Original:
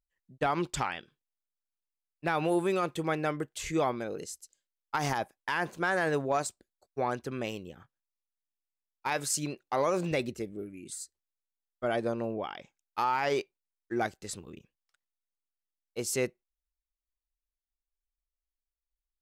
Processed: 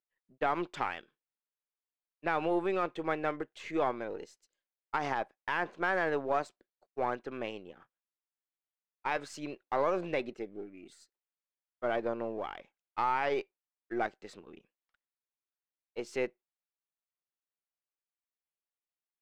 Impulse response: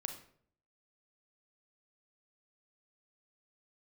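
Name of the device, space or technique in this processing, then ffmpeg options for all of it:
crystal radio: -af "highpass=300,lowpass=2700,aeval=exprs='if(lt(val(0),0),0.708*val(0),val(0))':c=same"

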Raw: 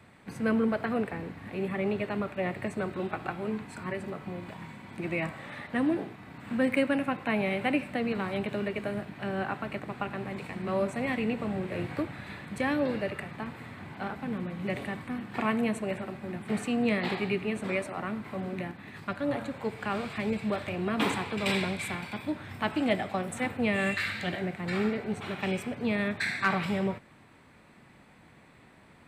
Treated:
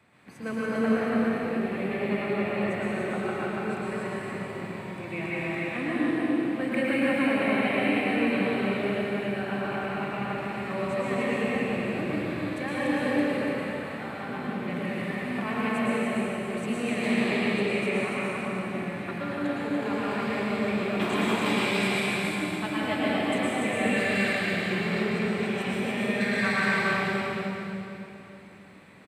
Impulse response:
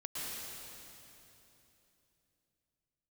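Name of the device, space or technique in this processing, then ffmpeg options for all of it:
stadium PA: -filter_complex "[0:a]highpass=f=170:p=1,equalizer=f=2400:t=o:w=0.26:g=3,aecho=1:1:253.6|288.6:0.282|0.708[s0];[1:a]atrim=start_sample=2205[s1];[s0][s1]afir=irnorm=-1:irlink=0"

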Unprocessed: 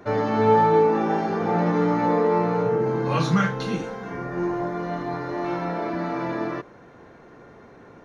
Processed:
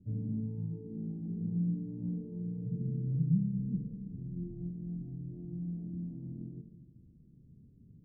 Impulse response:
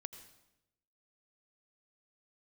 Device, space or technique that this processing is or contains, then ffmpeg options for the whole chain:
club heard from the street: -filter_complex "[0:a]alimiter=limit=0.224:level=0:latency=1:release=311,lowpass=f=190:w=0.5412,lowpass=f=190:w=1.3066[s0];[1:a]atrim=start_sample=2205[s1];[s0][s1]afir=irnorm=-1:irlink=0,volume=1.19"

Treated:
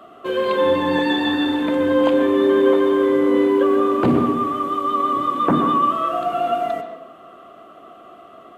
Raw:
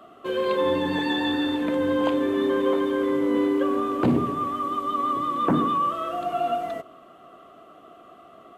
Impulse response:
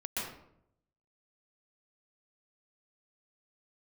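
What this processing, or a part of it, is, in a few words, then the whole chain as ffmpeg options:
filtered reverb send: -filter_complex "[0:a]asplit=2[s0][s1];[s1]highpass=240,lowpass=4300[s2];[1:a]atrim=start_sample=2205[s3];[s2][s3]afir=irnorm=-1:irlink=0,volume=0.398[s4];[s0][s4]amix=inputs=2:normalize=0,volume=1.41"

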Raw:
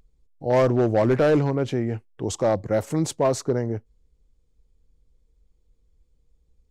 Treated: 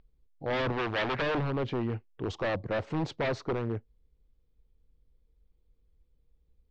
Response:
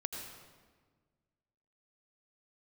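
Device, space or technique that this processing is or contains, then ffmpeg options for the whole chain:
synthesiser wavefolder: -filter_complex "[0:a]aeval=exprs='0.112*(abs(mod(val(0)/0.112+3,4)-2)-1)':c=same,lowpass=f=4200:w=0.5412,lowpass=f=4200:w=1.3066,asettb=1/sr,asplit=3[s0][s1][s2];[s0]atrim=end=0.724[s3];[s1]atrim=start=0.72:end=1.22,asetpts=PTS-STARTPTS,afade=t=in:d=0.004:c=qsin,afade=t=out:st=0.496:d=0.004:c=qsin,tiltshelf=f=740:g=-5.5[s4];[s2]atrim=start=1.216[s5];[s3][s4]acrossfade=d=0.004:c1=hsin:c2=qsin[s6];[s6][s5]acrossfade=d=0.004:c1=qsin:c2=hsin,volume=0.596"

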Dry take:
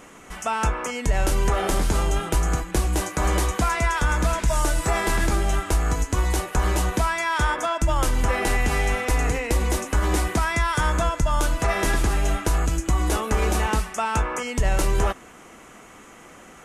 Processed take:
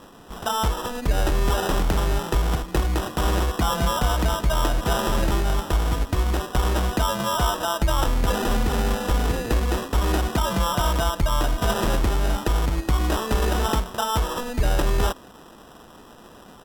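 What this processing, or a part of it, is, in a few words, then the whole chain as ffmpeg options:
crushed at another speed: -af "asetrate=55125,aresample=44100,acrusher=samples=16:mix=1:aa=0.000001,asetrate=35280,aresample=44100"

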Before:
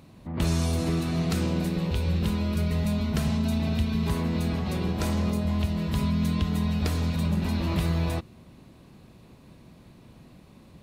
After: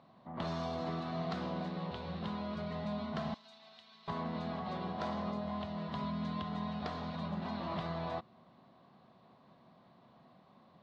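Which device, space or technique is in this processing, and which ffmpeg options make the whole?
kitchen radio: -filter_complex "[0:a]highpass=210,equalizer=f=310:t=q:w=4:g=-8,equalizer=f=440:t=q:w=4:g=-4,equalizer=f=710:t=q:w=4:g=9,equalizer=f=1100:t=q:w=4:g=7,equalizer=f=2500:t=q:w=4:g=-9,lowpass=f=4100:w=0.5412,lowpass=f=4100:w=1.3066,asettb=1/sr,asplit=3[s0][s1][s2];[s0]atrim=end=3.344[s3];[s1]atrim=start=3.34:end=4.08,asetpts=PTS-STARTPTS,afade=t=in:d=0.004:c=qsin,afade=t=out:st=0.736:d=0.004:c=qsin,aderivative[s4];[s2]atrim=start=4.076[s5];[s3][s4]acrossfade=d=0.004:c1=hsin:c2=qsin[s6];[s6][s5]acrossfade=d=0.004:c1=qsin:c2=hsin,volume=0.422"

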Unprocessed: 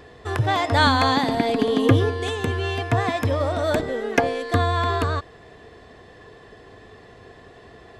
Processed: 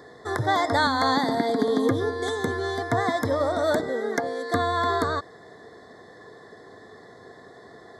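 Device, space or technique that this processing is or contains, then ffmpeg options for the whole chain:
PA system with an anti-feedback notch: -af "highpass=160,asuperstop=centerf=2700:order=8:qfactor=2,alimiter=limit=0.282:level=0:latency=1:release=341"

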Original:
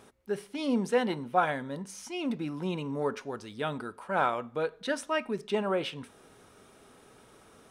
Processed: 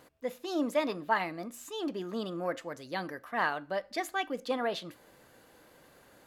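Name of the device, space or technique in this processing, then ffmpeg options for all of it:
nightcore: -af "asetrate=54243,aresample=44100,volume=0.75"

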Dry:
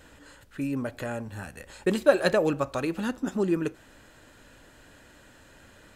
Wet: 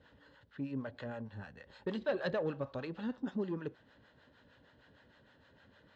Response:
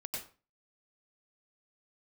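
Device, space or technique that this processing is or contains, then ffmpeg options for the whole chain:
guitar amplifier with harmonic tremolo: -filter_complex "[0:a]acrossover=split=580[s0][s1];[s0]aeval=exprs='val(0)*(1-0.7/2+0.7/2*cos(2*PI*6.5*n/s))':c=same[s2];[s1]aeval=exprs='val(0)*(1-0.7/2-0.7/2*cos(2*PI*6.5*n/s))':c=same[s3];[s2][s3]amix=inputs=2:normalize=0,asoftclip=type=tanh:threshold=0.0944,highpass=85,equalizer=f=330:t=q:w=4:g=-7,equalizer=f=700:t=q:w=4:g=-4,equalizer=f=1300:t=q:w=4:g=-5,equalizer=f=2400:t=q:w=4:g=-10,lowpass=f=4000:w=0.5412,lowpass=f=4000:w=1.3066,volume=0.631"

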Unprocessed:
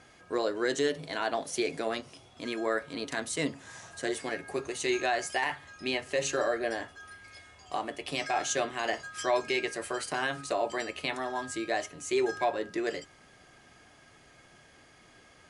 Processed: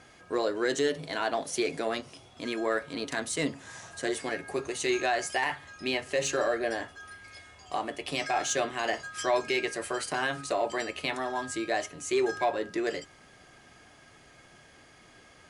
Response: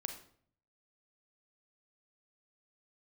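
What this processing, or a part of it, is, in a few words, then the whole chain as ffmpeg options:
parallel distortion: -filter_complex "[0:a]asplit=2[s0][s1];[s1]asoftclip=type=hard:threshold=0.0316,volume=0.251[s2];[s0][s2]amix=inputs=2:normalize=0"

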